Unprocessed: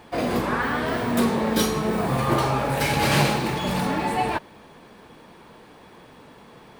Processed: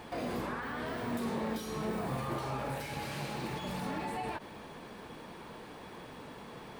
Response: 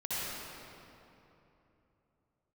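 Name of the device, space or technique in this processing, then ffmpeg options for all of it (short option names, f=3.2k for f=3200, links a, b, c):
de-esser from a sidechain: -filter_complex "[0:a]asplit=2[a][b];[b]highpass=f=4.4k:p=1,apad=whole_len=299678[c];[a][c]sidechaincompress=threshold=-50dB:ratio=5:attack=4.4:release=40"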